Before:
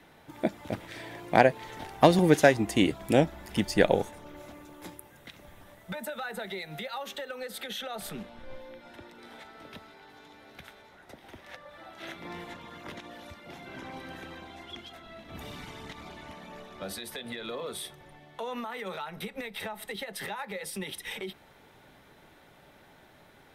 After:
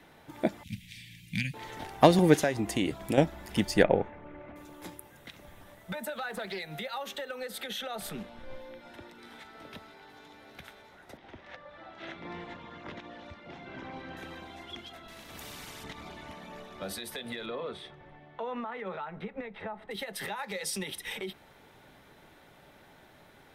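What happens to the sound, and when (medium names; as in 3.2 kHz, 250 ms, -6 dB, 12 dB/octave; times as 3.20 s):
0.63–1.54 s: elliptic band-stop 200–2400 Hz
2.38–3.18 s: compression 2.5:1, threshold -26 dBFS
3.83–4.56 s: Chebyshev low-pass 2.3 kHz, order 3
6.11–6.63 s: loudspeaker Doppler distortion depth 0.27 ms
9.13–9.53 s: peaking EQ 600 Hz -6.5 dB
11.17–14.17 s: distance through air 140 m
15.08–15.84 s: spectrum-flattening compressor 2:1
17.45–19.90 s: low-pass 3.1 kHz -> 1.4 kHz
20.43–20.83 s: peaking EQ 5.8 kHz +10 dB 1.2 oct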